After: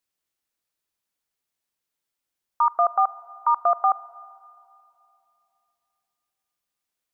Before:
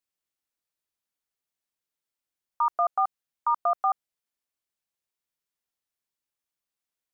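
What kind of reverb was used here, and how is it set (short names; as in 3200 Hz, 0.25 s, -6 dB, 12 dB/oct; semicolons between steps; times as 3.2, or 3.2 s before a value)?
Schroeder reverb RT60 2.8 s, combs from 27 ms, DRR 18.5 dB; gain +4.5 dB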